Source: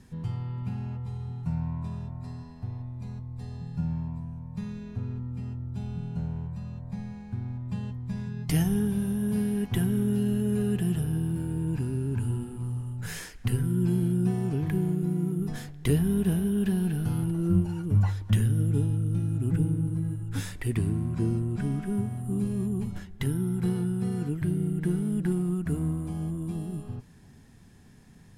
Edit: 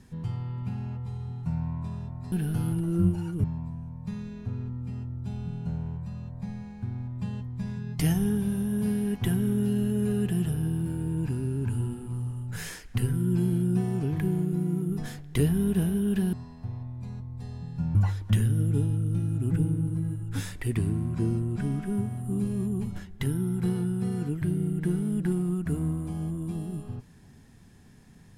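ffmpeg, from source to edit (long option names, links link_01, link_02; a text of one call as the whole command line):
ffmpeg -i in.wav -filter_complex "[0:a]asplit=5[link_01][link_02][link_03][link_04][link_05];[link_01]atrim=end=2.322[link_06];[link_02]atrim=start=16.828:end=17.952[link_07];[link_03]atrim=start=3.938:end=16.832[link_08];[link_04]atrim=start=2.318:end=3.942[link_09];[link_05]atrim=start=17.948[link_10];[link_06][link_07]acrossfade=duration=0.004:curve1=hsin:curve2=hsin[link_11];[link_11][link_08]acrossfade=duration=0.004:curve1=hsin:curve2=hsin[link_12];[link_12][link_09]acrossfade=duration=0.004:curve1=hsin:curve2=hsin[link_13];[link_13][link_10]acrossfade=duration=0.004:curve1=hsin:curve2=hsin" out.wav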